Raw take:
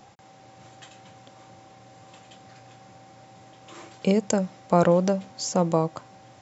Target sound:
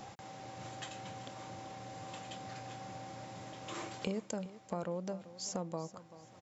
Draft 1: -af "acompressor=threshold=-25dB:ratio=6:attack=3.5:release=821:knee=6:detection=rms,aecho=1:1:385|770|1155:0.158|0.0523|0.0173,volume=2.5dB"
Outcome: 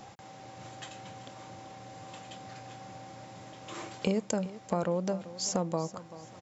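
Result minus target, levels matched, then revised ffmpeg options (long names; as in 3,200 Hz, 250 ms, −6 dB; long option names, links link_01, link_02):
downward compressor: peak gain reduction −8.5 dB
-af "acompressor=threshold=-35dB:ratio=6:attack=3.5:release=821:knee=6:detection=rms,aecho=1:1:385|770|1155:0.158|0.0523|0.0173,volume=2.5dB"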